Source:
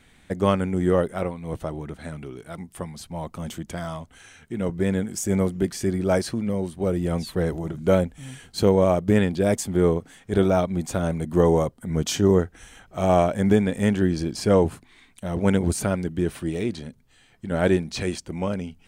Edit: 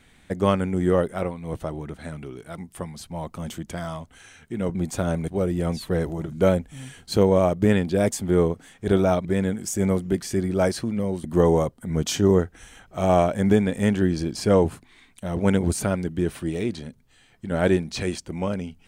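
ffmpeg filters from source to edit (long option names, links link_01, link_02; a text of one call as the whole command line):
ffmpeg -i in.wav -filter_complex "[0:a]asplit=5[link_01][link_02][link_03][link_04][link_05];[link_01]atrim=end=4.752[link_06];[link_02]atrim=start=10.708:end=11.242[link_07];[link_03]atrim=start=6.738:end=10.712[link_08];[link_04]atrim=start=4.748:end=6.742[link_09];[link_05]atrim=start=11.238[link_10];[link_06][link_07]acrossfade=duration=0.004:curve1=hsin:curve2=hsin[link_11];[link_11][link_08]acrossfade=duration=0.004:curve1=hsin:curve2=hsin[link_12];[link_12][link_09]acrossfade=duration=0.004:curve1=hsin:curve2=hsin[link_13];[link_13][link_10]acrossfade=duration=0.004:curve1=hsin:curve2=hsin" out.wav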